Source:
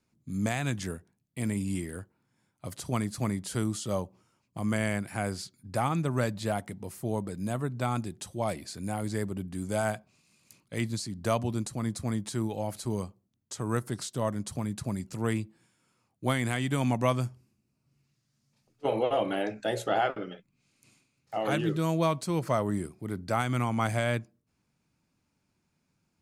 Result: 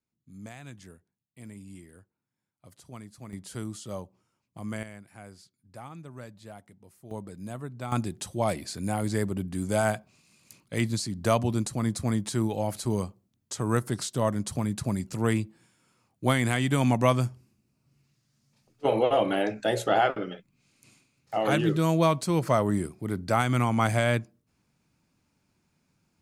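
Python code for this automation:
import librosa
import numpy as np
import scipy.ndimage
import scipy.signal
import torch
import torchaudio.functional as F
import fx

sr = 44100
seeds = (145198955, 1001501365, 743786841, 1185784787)

y = fx.gain(x, sr, db=fx.steps((0.0, -14.0), (3.33, -6.0), (4.83, -15.0), (7.11, -6.0), (7.92, 4.0)))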